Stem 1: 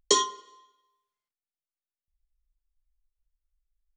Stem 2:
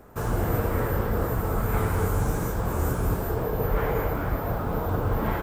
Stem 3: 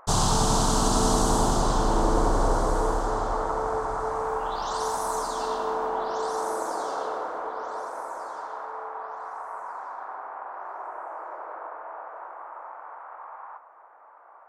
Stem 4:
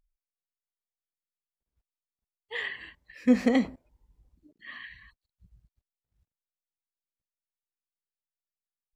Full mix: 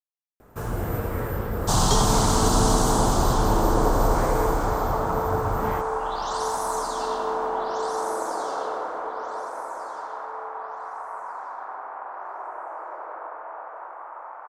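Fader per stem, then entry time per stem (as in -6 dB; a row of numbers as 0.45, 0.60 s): -6.5 dB, -2.5 dB, +1.5 dB, off; 1.80 s, 0.40 s, 1.60 s, off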